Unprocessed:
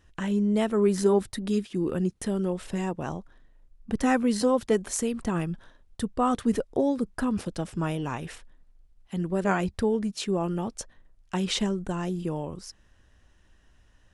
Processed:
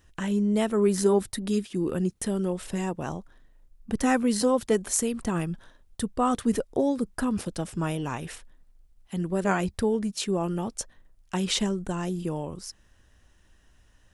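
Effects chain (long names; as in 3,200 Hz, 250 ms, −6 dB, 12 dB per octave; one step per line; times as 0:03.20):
high-shelf EQ 7,900 Hz +9.5 dB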